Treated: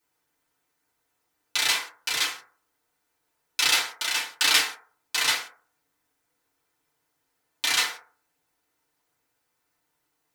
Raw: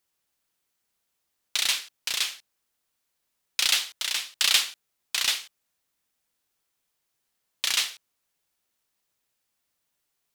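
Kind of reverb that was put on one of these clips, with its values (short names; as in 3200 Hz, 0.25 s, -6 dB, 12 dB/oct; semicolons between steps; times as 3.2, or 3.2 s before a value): FDN reverb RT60 0.45 s, low-frequency decay 0.7×, high-frequency decay 0.25×, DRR -9 dB; gain -2.5 dB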